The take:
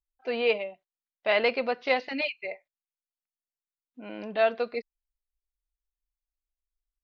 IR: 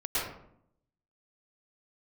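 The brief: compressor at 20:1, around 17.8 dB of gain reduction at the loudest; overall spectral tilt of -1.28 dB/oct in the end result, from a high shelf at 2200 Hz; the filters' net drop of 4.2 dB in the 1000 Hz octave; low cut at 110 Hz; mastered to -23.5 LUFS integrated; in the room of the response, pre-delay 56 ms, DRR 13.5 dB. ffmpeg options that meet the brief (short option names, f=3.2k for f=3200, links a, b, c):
-filter_complex "[0:a]highpass=110,equalizer=f=1k:t=o:g=-8.5,highshelf=f=2.2k:g=6,acompressor=threshold=-37dB:ratio=20,asplit=2[a][b];[1:a]atrim=start_sample=2205,adelay=56[c];[b][c]afir=irnorm=-1:irlink=0,volume=-22dB[d];[a][d]amix=inputs=2:normalize=0,volume=19dB"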